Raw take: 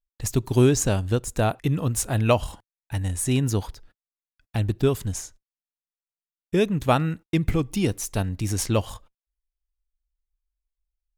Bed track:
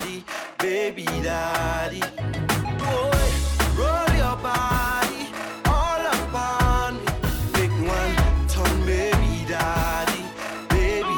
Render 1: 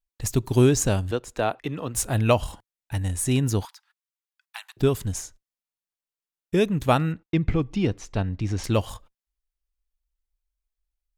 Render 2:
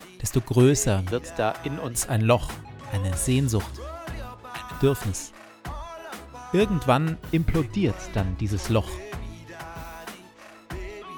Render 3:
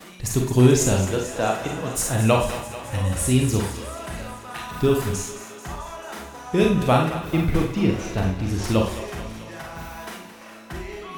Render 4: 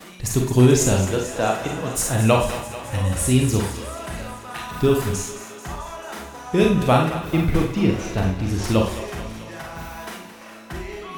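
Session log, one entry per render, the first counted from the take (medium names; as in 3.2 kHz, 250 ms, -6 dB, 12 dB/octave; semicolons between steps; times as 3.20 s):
1.11–1.95 s: three-band isolator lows -12 dB, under 280 Hz, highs -13 dB, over 5.1 kHz; 3.65–4.77 s: steep high-pass 880 Hz 48 dB/octave; 7.12–8.64 s: distance through air 160 m
add bed track -15.5 dB
thinning echo 219 ms, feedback 70%, high-pass 340 Hz, level -12 dB; Schroeder reverb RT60 0.4 s, combs from 32 ms, DRR 0.5 dB
trim +1.5 dB; peak limiter -3 dBFS, peak gain reduction 2.5 dB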